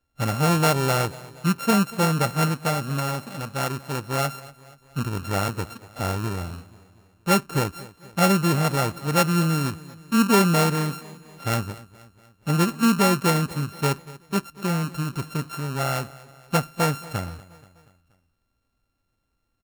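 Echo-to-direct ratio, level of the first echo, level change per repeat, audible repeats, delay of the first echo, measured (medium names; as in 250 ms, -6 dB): -18.0 dB, -19.5 dB, -5.5 dB, 3, 239 ms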